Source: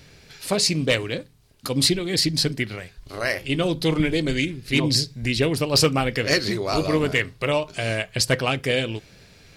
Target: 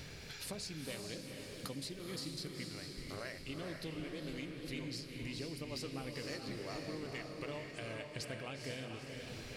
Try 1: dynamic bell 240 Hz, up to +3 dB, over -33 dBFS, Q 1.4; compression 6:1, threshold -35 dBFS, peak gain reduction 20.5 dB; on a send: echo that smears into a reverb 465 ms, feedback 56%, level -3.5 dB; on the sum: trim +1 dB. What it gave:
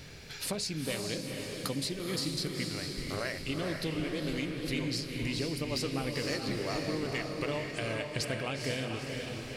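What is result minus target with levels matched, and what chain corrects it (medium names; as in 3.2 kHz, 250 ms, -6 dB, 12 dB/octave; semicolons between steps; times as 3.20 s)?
compression: peak gain reduction -9.5 dB
dynamic bell 240 Hz, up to +3 dB, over -33 dBFS, Q 1.4; compression 6:1, threshold -46.5 dBFS, peak gain reduction 30 dB; on a send: echo that smears into a reverb 465 ms, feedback 56%, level -3.5 dB; on the sum: trim +1 dB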